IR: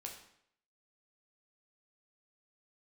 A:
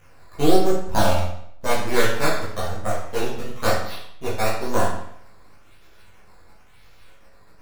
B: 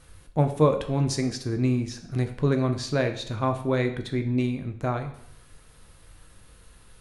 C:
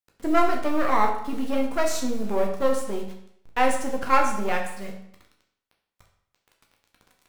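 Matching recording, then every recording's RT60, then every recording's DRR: C; 0.70, 0.70, 0.70 s; -9.0, 5.5, 0.5 dB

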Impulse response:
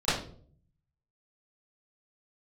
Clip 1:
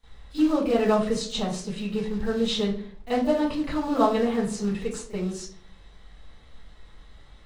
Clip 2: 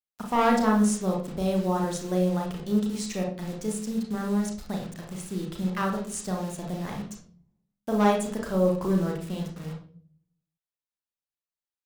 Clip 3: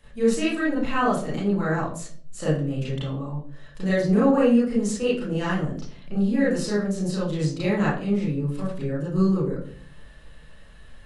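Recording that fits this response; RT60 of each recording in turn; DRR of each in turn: 1; 0.50, 0.50, 0.50 s; -18.5, 0.0, -9.5 dB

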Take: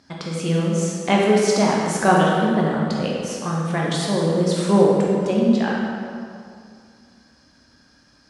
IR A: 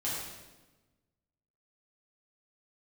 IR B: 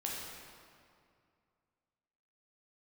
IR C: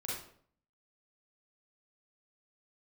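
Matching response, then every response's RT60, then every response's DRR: B; 1.2, 2.3, 0.60 s; -8.5, -4.0, -6.0 dB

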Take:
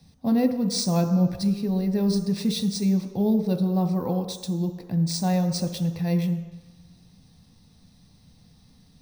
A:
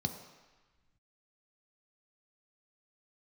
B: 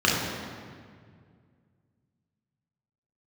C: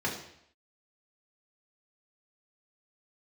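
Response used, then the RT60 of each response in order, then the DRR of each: A; 1.2, 2.0, 0.70 s; 5.5, -5.0, -4.0 dB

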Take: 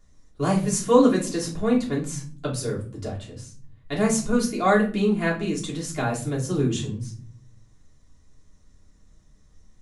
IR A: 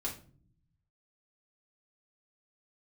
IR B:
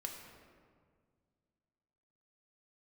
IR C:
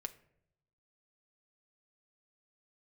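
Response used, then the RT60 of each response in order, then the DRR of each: A; not exponential, 1.9 s, 0.70 s; -5.5, 1.5, 7.0 dB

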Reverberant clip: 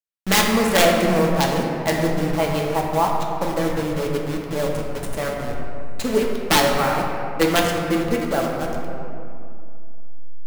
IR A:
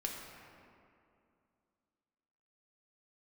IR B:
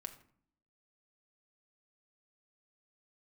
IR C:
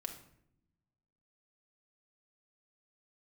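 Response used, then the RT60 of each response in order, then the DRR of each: A; 2.5, 0.55, 0.75 s; -1.0, 5.0, 3.0 dB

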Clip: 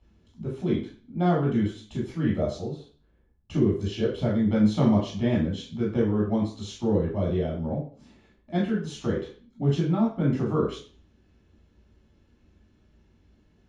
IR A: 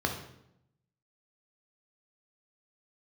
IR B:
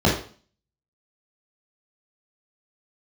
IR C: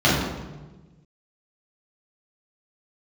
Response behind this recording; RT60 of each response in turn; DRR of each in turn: B; 0.80, 0.40, 1.2 s; 2.5, -5.0, -9.0 dB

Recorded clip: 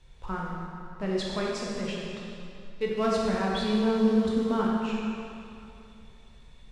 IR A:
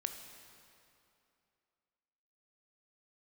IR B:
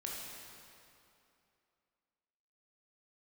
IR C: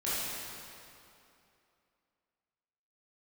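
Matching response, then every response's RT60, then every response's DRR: B; 2.7, 2.7, 2.7 s; 6.0, -3.5, -11.5 dB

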